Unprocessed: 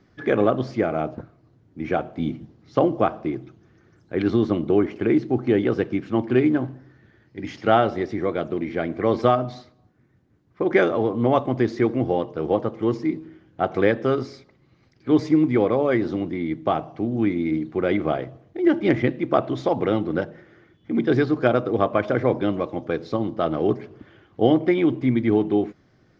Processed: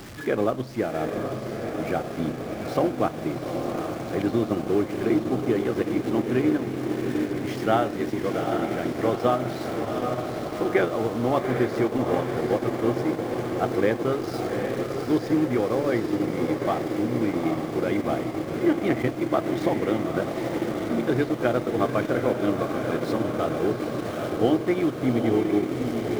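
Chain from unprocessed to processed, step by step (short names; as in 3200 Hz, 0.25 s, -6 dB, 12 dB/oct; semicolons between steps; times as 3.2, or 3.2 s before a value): zero-crossing step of -30 dBFS; diffused feedback echo 0.802 s, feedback 73%, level -4.5 dB; transient shaper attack +1 dB, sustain -5 dB; gain -5.5 dB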